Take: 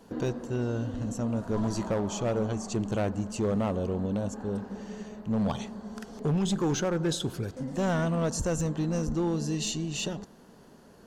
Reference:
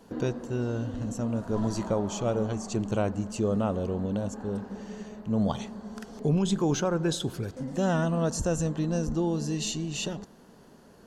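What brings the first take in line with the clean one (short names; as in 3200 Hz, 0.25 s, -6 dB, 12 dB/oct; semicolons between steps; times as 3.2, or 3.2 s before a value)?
clip repair -22.5 dBFS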